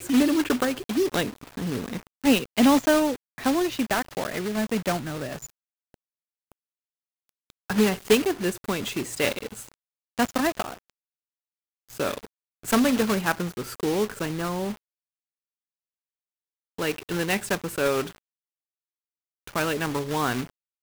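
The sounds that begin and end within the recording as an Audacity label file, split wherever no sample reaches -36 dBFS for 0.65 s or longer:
7.500000	10.740000	sound
11.910000	14.730000	sound
16.780000	18.110000	sound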